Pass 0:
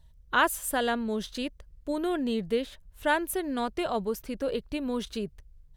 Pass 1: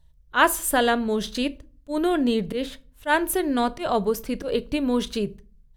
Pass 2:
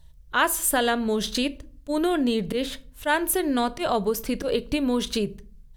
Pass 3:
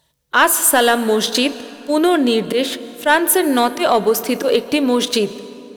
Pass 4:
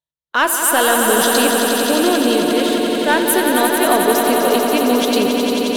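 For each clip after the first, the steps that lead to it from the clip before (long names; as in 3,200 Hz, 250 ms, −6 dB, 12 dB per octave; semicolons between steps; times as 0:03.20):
noise gate −43 dBFS, range −9 dB; volume swells 100 ms; convolution reverb RT60 0.40 s, pre-delay 7 ms, DRR 15 dB; level +7 dB
parametric band 12,000 Hz +4 dB 3 octaves; downward compressor 2 to 1, threshold −32 dBFS, peak gain reduction 11.5 dB; level +6 dB
high-pass filter 270 Hz 12 dB per octave; leveller curve on the samples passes 1; dense smooth reverb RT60 3.3 s, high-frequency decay 0.5×, pre-delay 115 ms, DRR 15.5 dB; level +6.5 dB
noise gate −25 dBFS, range −28 dB; on a send: echo that builds up and dies away 89 ms, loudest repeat 5, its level −7 dB; on the sum: level −3 dB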